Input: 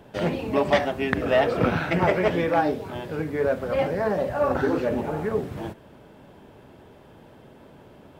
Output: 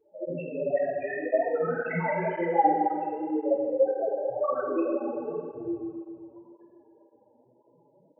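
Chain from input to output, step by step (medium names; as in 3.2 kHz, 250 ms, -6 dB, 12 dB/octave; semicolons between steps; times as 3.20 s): reverb removal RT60 0.86 s; tilt EQ +3.5 dB/octave; loudest bins only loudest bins 2; flutter echo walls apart 7.2 m, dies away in 0.25 s; reverberation RT60 2.0 s, pre-delay 3 ms, DRR -5 dB; cancelling through-zero flanger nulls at 1.9 Hz, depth 6.1 ms; trim +1 dB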